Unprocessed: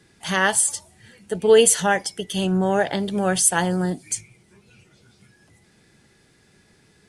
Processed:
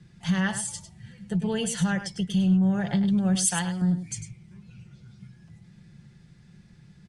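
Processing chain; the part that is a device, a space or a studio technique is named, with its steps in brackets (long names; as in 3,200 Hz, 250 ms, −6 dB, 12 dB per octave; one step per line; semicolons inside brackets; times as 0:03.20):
jukebox (low-pass filter 6,800 Hz 12 dB per octave; low shelf with overshoot 240 Hz +13 dB, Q 1.5; downward compressor 3 to 1, threshold −19 dBFS, peak gain reduction 10 dB)
comb filter 5.7 ms, depth 40%
0:03.35–0:03.82: tilt shelving filter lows −8.5 dB, about 830 Hz
single-tap delay 101 ms −10.5 dB
level −6 dB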